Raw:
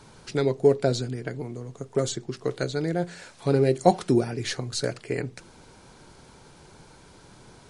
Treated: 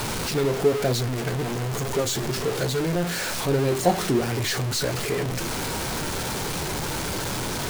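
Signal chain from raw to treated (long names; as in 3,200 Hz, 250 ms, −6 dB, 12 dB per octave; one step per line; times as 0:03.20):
converter with a step at zero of −18.5 dBFS
flanger 1.1 Hz, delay 8.2 ms, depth 6.1 ms, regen −57%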